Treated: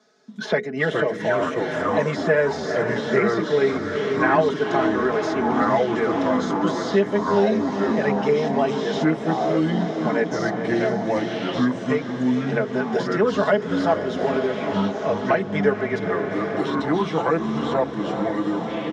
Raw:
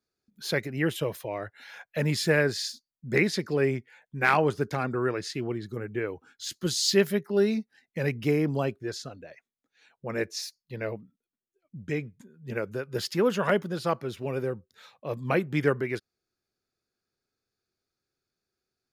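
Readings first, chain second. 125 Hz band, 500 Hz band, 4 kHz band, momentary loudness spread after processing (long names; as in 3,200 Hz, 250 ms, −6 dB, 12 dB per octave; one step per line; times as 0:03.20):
+3.5 dB, +8.5 dB, +0.5 dB, 5 LU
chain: de-essing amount 90%
mains-hum notches 60/120/180/240/300/360/420/480 Hz
comb filter 4.7 ms, depth 89%
delay with pitch and tempo change per echo 279 ms, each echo −4 semitones, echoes 3
loudspeaker in its box 240–5,900 Hz, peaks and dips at 350 Hz −6 dB, 680 Hz +5 dB, 1,300 Hz −3 dB, 2,500 Hz −10 dB, 4,500 Hz −10 dB
feedback delay with all-pass diffusion 456 ms, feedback 68%, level −11 dB
multiband upward and downward compressor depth 70%
level +5 dB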